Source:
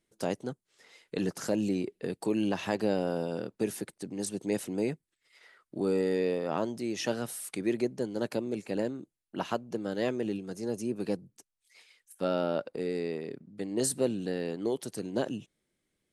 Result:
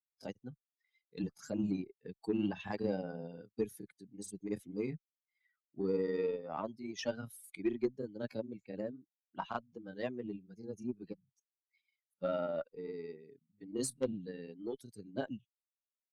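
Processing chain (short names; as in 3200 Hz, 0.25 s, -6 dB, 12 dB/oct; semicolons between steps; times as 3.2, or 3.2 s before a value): per-bin expansion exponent 2; high shelf 4900 Hz -4.5 dB; added harmonics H 5 -18 dB, 7 -22 dB, 8 -37 dB, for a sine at -17.5 dBFS; grains, spray 24 ms, pitch spread up and down by 0 st; gain -1.5 dB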